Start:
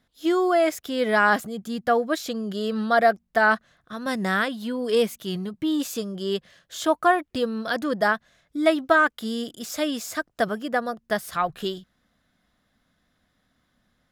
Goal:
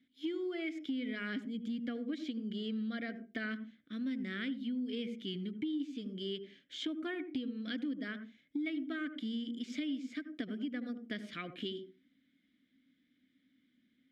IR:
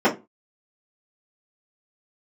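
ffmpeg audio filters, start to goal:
-filter_complex "[0:a]asplit=2[a][b];[1:a]atrim=start_sample=2205,adelay=71[c];[b][c]afir=irnorm=-1:irlink=0,volume=-34dB[d];[a][d]amix=inputs=2:normalize=0,acrossover=split=8500[e][f];[f]acompressor=threshold=-53dB:ratio=4:attack=1:release=60[g];[e][g]amix=inputs=2:normalize=0,asplit=3[h][i][j];[h]bandpass=f=270:t=q:w=8,volume=0dB[k];[i]bandpass=f=2.29k:t=q:w=8,volume=-6dB[l];[j]bandpass=f=3.01k:t=q:w=8,volume=-9dB[m];[k][l][m]amix=inputs=3:normalize=0,acompressor=threshold=-43dB:ratio=5,volume=7dB"

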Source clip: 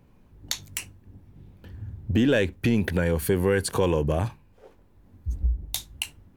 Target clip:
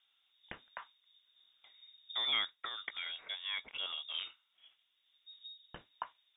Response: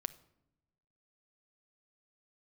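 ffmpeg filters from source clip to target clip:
-af "asetnsamples=n=441:p=0,asendcmd='2.47 highpass f 1300;4.14 highpass f 580',highpass=f=510:p=1,lowpass=f=3.2k:t=q:w=0.5098,lowpass=f=3.2k:t=q:w=0.6013,lowpass=f=3.2k:t=q:w=0.9,lowpass=f=3.2k:t=q:w=2.563,afreqshift=-3800,volume=-8.5dB"

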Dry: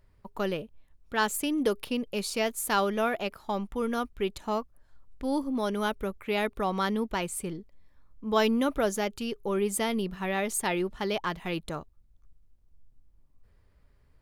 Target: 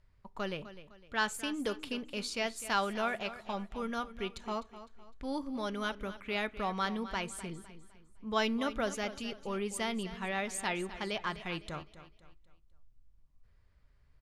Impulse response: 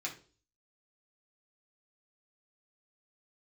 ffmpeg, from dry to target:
-filter_complex "[0:a]lowpass=7k,equalizer=f=360:t=o:w=1.9:g=-6.5,bandreject=f=840:w=24,aecho=1:1:254|508|762|1016:0.2|0.0758|0.0288|0.0109,asplit=2[a][b];[1:a]atrim=start_sample=2205[c];[b][c]afir=irnorm=-1:irlink=0,volume=-15dB[d];[a][d]amix=inputs=2:normalize=0,volume=-3.5dB"

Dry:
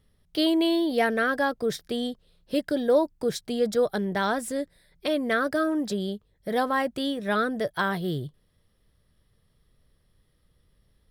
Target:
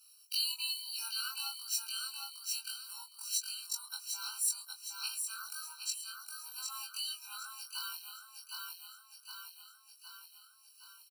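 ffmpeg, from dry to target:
-filter_complex "[0:a]afftfilt=real='re':imag='-im':win_size=2048:overlap=0.75,equalizer=f=5.3k:t=o:w=0.43:g=5,acrossover=split=190|4700[a][b][c];[a]dynaudnorm=f=910:g=5:m=14dB[d];[b]alimiter=level_in=2.5dB:limit=-24dB:level=0:latency=1:release=141,volume=-2.5dB[e];[d][e][c]amix=inputs=3:normalize=0,equalizer=f=830:t=o:w=2:g=-10,asplit=2[f][g];[g]aecho=0:1:763|1526|2289|3052|3815:0.562|0.236|0.0992|0.0417|0.0175[h];[f][h]amix=inputs=2:normalize=0,acompressor=threshold=-56dB:ratio=2,crystalizer=i=8.5:c=0,afftfilt=real='re*eq(mod(floor(b*sr/1024/780),2),1)':imag='im*eq(mod(floor(b*sr/1024/780),2),1)':win_size=1024:overlap=0.75,volume=6dB"

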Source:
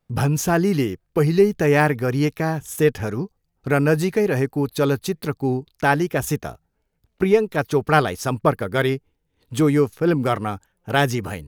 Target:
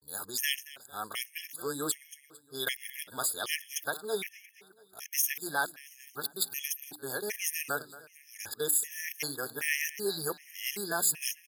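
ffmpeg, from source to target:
-filter_complex "[0:a]areverse,aderivative,asplit=2[a][b];[b]alimiter=limit=-21.5dB:level=0:latency=1:release=62,volume=2dB[c];[a][c]amix=inputs=2:normalize=0,bandreject=f=60:t=h:w=6,bandreject=f=120:t=h:w=6,bandreject=f=180:t=h:w=6,bandreject=f=240:t=h:w=6,bandreject=f=300:t=h:w=6,aecho=1:1:226|452|678|904|1130:0.126|0.068|0.0367|0.0198|0.0107,afftfilt=real='re*gt(sin(2*PI*1.3*pts/sr)*(1-2*mod(floor(b*sr/1024/1700),2)),0)':imag='im*gt(sin(2*PI*1.3*pts/sr)*(1-2*mod(floor(b*sr/1024/1700),2)),0)':win_size=1024:overlap=0.75"

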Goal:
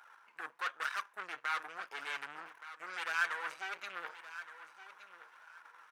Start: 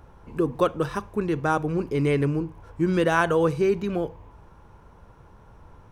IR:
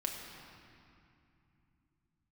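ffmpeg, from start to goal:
-af "areverse,acompressor=threshold=-32dB:ratio=6,areverse,aeval=exprs='0.0708*(cos(1*acos(clip(val(0)/0.0708,-1,1)))-cos(1*PI/2))+0.02*(cos(4*acos(clip(val(0)/0.0708,-1,1)))-cos(4*PI/2))':c=same,flanger=delay=1.3:depth=5.2:regen=51:speed=1.1:shape=sinusoidal,aeval=exprs='(tanh(50.1*val(0)+0.8)-tanh(0.8))/50.1':c=same,highpass=f=1.5k:t=q:w=2.5,aecho=1:1:1170|2340:0.2|0.0419,volume=6dB"

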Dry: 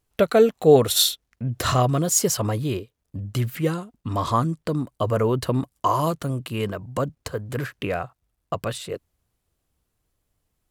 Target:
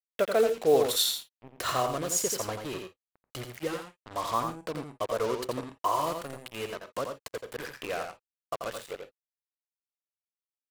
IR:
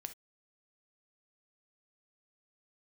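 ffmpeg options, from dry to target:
-filter_complex "[0:a]bass=f=250:g=-15,treble=f=4k:g=-2,acrusher=bits=4:mix=0:aa=0.5,asplit=2[a][b];[1:a]atrim=start_sample=2205,asetrate=57330,aresample=44100,adelay=85[c];[b][c]afir=irnorm=-1:irlink=0,volume=0.5dB[d];[a][d]amix=inputs=2:normalize=0,volume=-6.5dB"

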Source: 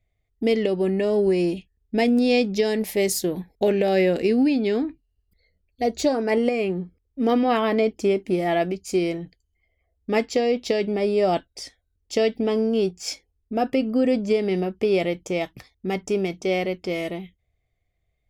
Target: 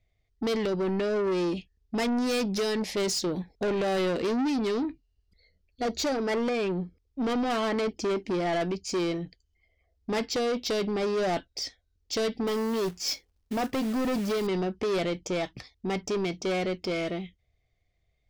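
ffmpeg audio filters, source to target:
-filter_complex "[0:a]lowpass=f=5.4k:t=q:w=1.8,asoftclip=type=tanh:threshold=-24.5dB,asettb=1/sr,asplit=3[a][b][c];[a]atrim=end=12.474[d];[b]atrim=start=12.47:end=14.47,asetpts=PTS-STARTPTS,afade=t=in:d=0.004:c=qsin,afade=t=out:st=1.996:d=0.004:c=qsin,acrusher=bits=3:mode=log:mix=0:aa=0.000001[e];[c]atrim=start=14.466[f];[d][e]acrossfade=d=0.004:c1=hsin:c2=qsin[g];[g][f]acrossfade=d=0.004:c1=qsin:c2=hsin"

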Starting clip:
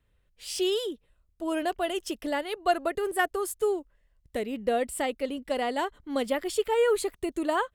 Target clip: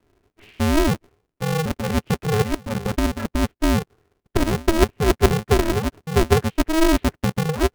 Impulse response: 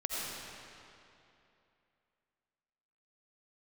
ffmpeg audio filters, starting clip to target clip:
-af "highpass=f=230:t=q:w=0.5412,highpass=f=230:t=q:w=1.307,lowpass=f=2.9k:t=q:w=0.5176,lowpass=f=2.9k:t=q:w=0.7071,lowpass=f=2.9k:t=q:w=1.932,afreqshift=-300,areverse,acompressor=threshold=-35dB:ratio=6,areverse,lowshelf=f=360:t=q:w=3:g=12.5,aeval=exprs='val(0)*sgn(sin(2*PI*160*n/s))':c=same,volume=4.5dB"

